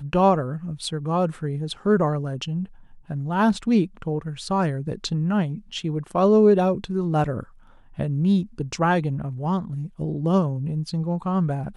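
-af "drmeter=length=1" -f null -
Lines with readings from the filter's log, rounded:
Channel 1: DR: 8.9
Overall DR: 8.9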